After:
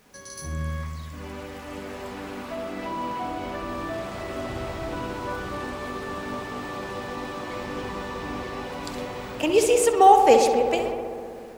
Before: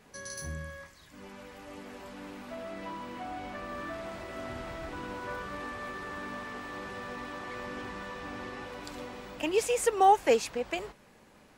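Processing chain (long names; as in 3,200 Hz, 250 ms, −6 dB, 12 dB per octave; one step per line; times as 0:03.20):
dynamic equaliser 1,700 Hz, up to −6 dB, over −48 dBFS, Q 1.3
automatic gain control gain up to 8 dB
bit reduction 10 bits
on a send: feedback echo with a low-pass in the loop 64 ms, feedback 85%, low-pass 2,800 Hz, level −7 dB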